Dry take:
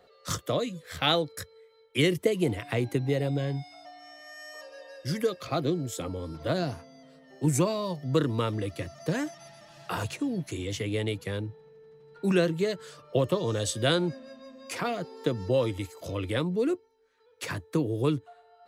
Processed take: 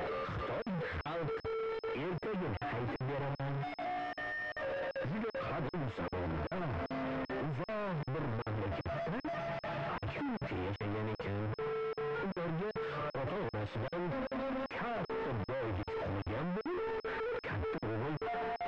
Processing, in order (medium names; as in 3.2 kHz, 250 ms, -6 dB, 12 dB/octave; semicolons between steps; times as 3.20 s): one-bit comparator; crackling interface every 0.39 s, samples 2048, zero, from 0.62 s; class-D stage that switches slowly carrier 5.2 kHz; trim -6 dB